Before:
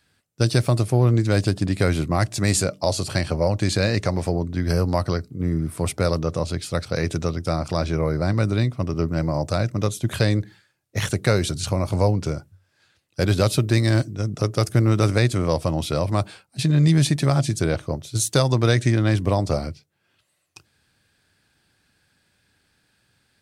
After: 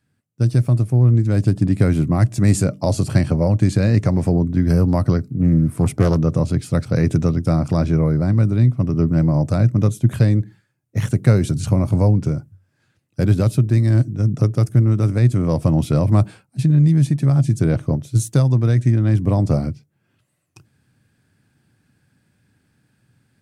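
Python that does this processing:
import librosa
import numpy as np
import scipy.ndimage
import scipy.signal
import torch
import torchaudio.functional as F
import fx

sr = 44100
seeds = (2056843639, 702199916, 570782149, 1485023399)

y = fx.doppler_dist(x, sr, depth_ms=0.32, at=(5.29, 6.22))
y = fx.graphic_eq(y, sr, hz=(125, 250, 4000), db=(12, 8, -7))
y = fx.rider(y, sr, range_db=4, speed_s=0.5)
y = y * librosa.db_to_amplitude(-4.5)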